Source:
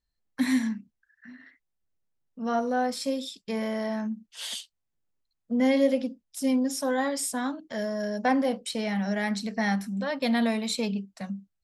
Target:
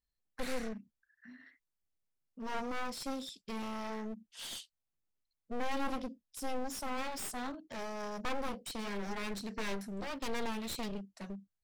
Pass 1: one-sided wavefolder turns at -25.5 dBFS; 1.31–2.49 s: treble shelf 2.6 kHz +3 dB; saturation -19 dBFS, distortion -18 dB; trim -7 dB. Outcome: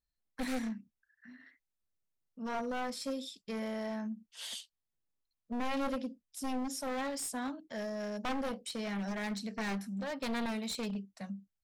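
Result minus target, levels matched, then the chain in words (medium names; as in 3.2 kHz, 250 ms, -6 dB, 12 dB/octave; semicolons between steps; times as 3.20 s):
one-sided wavefolder: distortion -10 dB
one-sided wavefolder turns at -33 dBFS; 1.31–2.49 s: treble shelf 2.6 kHz +3 dB; saturation -19 dBFS, distortion -18 dB; trim -7 dB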